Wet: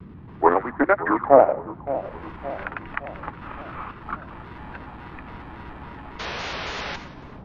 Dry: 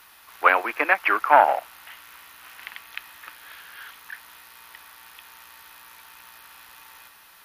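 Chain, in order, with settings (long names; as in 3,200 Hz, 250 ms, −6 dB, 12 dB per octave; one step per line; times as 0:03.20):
spectral tilt −4 dB per octave
automatic gain control gain up to 11 dB
transient designer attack +2 dB, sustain −11 dB
sound drawn into the spectrogram noise, 0:06.19–0:06.96, 370–8,200 Hz −27 dBFS
noise in a band 51–350 Hz −43 dBFS
formants moved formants −4 semitones
high-frequency loss of the air 280 metres
echo with a time of its own for lows and highs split 970 Hz, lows 567 ms, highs 93 ms, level −13.5 dB
pitch modulation by a square or saw wave square 3.6 Hz, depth 100 cents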